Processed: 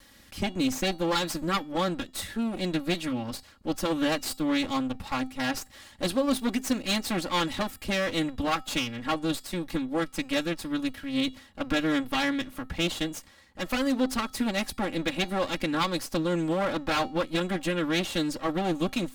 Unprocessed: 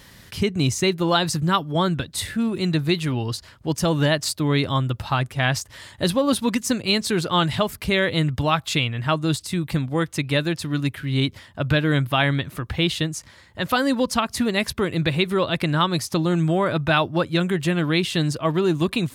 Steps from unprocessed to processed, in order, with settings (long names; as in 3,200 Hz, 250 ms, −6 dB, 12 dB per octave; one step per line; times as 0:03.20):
lower of the sound and its delayed copy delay 3.6 ms
tuned comb filter 260 Hz, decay 0.4 s, harmonics odd, mix 50%